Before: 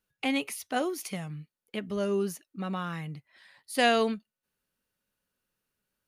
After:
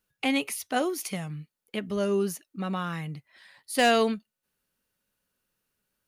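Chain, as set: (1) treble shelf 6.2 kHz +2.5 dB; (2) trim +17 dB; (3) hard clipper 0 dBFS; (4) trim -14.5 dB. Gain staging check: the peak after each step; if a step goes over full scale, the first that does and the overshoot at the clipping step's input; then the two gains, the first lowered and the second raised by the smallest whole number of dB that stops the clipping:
-12.0 dBFS, +5.0 dBFS, 0.0 dBFS, -14.5 dBFS; step 2, 5.0 dB; step 2 +12 dB, step 4 -9.5 dB

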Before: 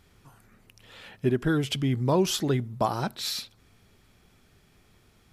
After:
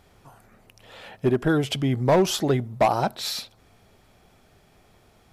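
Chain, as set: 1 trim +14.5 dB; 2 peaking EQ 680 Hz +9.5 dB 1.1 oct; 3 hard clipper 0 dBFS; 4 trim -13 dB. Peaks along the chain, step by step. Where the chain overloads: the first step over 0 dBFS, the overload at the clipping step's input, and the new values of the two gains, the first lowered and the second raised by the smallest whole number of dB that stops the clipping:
+2.5 dBFS, +8.5 dBFS, 0.0 dBFS, -13.0 dBFS; step 1, 8.5 dB; step 1 +5.5 dB, step 4 -4 dB

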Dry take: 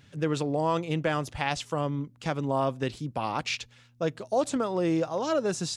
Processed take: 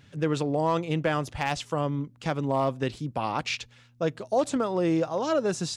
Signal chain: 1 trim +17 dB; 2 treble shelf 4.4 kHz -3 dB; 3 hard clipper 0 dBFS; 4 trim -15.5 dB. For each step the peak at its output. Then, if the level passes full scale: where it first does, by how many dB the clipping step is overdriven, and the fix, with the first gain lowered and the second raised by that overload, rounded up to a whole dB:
+5.5 dBFS, +5.0 dBFS, 0.0 dBFS, -15.5 dBFS; step 1, 5.0 dB; step 1 +12 dB, step 4 -10.5 dB

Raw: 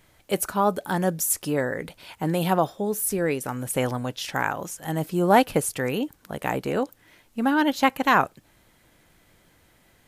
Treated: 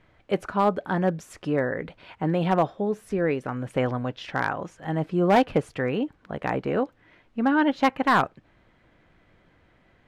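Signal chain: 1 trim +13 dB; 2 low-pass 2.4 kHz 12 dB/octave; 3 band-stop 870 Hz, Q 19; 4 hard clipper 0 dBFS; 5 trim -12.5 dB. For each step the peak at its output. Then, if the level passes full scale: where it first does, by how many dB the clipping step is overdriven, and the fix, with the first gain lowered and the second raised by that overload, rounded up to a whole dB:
+7.5 dBFS, +7.0 dBFS, +7.5 dBFS, 0.0 dBFS, -12.5 dBFS; step 1, 7.5 dB; step 1 +5 dB, step 5 -4.5 dB

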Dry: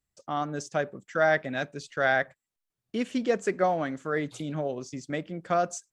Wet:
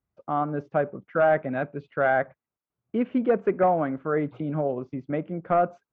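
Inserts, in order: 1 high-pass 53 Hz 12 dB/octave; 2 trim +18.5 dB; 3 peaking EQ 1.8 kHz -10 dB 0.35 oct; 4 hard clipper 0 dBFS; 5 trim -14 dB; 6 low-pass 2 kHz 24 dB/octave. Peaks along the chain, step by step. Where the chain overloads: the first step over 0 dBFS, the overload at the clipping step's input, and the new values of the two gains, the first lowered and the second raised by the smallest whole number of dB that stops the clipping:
-11.5 dBFS, +7.0 dBFS, +6.5 dBFS, 0.0 dBFS, -14.0 dBFS, -13.0 dBFS; step 2, 6.5 dB; step 2 +11.5 dB, step 5 -7 dB

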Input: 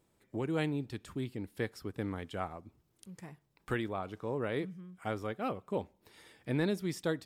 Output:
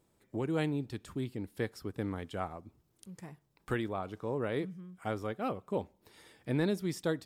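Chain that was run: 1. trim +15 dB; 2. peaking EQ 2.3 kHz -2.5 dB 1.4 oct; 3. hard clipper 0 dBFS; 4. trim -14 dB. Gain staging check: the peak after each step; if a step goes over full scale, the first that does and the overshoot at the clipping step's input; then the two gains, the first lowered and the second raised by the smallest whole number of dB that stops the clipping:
-5.5 dBFS, -6.0 dBFS, -6.0 dBFS, -20.0 dBFS; nothing clips

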